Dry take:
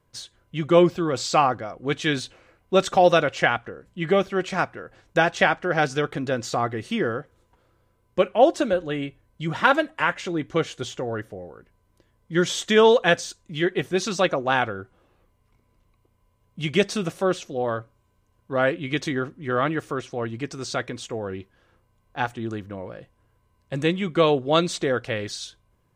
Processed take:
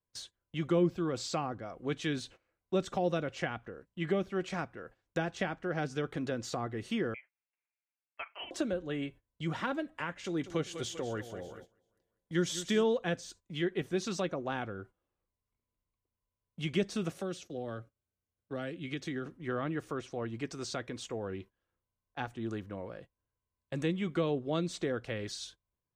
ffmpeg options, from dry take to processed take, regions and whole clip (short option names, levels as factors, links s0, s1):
-filter_complex "[0:a]asettb=1/sr,asplit=3[s0][s1][s2];[s0]atrim=end=7.144[s3];[s1]atrim=start=7.14:end=8.51,asetpts=PTS-STARTPTS,afade=t=in:d=0.004:c=qsin,afade=t=out:st=1.366:d=0.004:c=qsin,highpass=f=1300:w=0.5412,highpass=f=1300:w=1.3066,lowpass=f=3100:t=q:w=0.5098,lowpass=f=3100:t=q:w=0.6013,lowpass=f=3100:t=q:w=0.9,lowpass=f=3100:t=q:w=2.563,afreqshift=-3700[s4];[s2]atrim=start=8.506[s5];[s3][s4]acrossfade=d=0.004:c1=hsin:c2=qsin[s6];[s6][s5]acrossfade=d=0.004:c1=qsin:c2=hsin,asettb=1/sr,asplit=3[s7][s8][s9];[s7]atrim=end=10.244[s10];[s8]atrim=start=10.24:end=12.84,asetpts=PTS-STARTPTS,afade=t=in:d=0.004:c=qsin,afade=t=out:st=2.596:d=0.004:c=qsin,highshelf=f=4400:g=9,aecho=1:1:195|390|585|780|975:0.211|0.114|0.0616|0.0333|0.018,atrim=end_sample=114660[s11];[s9]atrim=start=12.836[s12];[s10][s11]acrossfade=d=0.004:c1=hsin:c2=qsin[s13];[s13][s12]acrossfade=d=0.004:c1=qsin:c2=hsin,asettb=1/sr,asplit=3[s14][s15][s16];[s14]atrim=end=17.144[s17];[s15]atrim=start=17.14:end=19.26,asetpts=PTS-STARTPTS,afade=t=in:d=0.004:c=qsin,afade=t=out:st=2.116:d=0.004:c=qsin,highpass=49,bandreject=f=1000:w=5.4,acrossover=split=310|3100[s18][s19][s20];[s18]acompressor=threshold=0.0316:ratio=4[s21];[s19]acompressor=threshold=0.02:ratio=4[s22];[s20]acompressor=threshold=0.00891:ratio=4[s23];[s21][s22][s23]amix=inputs=3:normalize=0[s24];[s16]atrim=start=19.256[s25];[s17][s24]acrossfade=d=0.004:c1=hsin:c2=qsin[s26];[s26][s25]acrossfade=d=0.004:c1=qsin:c2=hsin,agate=range=0.126:threshold=0.00708:ratio=16:detection=peak,equalizer=f=130:w=4.6:g=-3.5,acrossover=split=360[s27][s28];[s28]acompressor=threshold=0.0282:ratio=3[s29];[s27][s29]amix=inputs=2:normalize=0,volume=0.473"